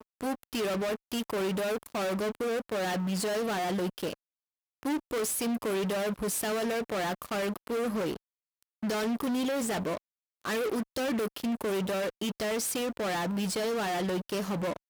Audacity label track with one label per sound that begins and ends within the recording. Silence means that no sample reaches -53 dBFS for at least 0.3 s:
4.830000	8.170000	sound
8.630000	9.980000	sound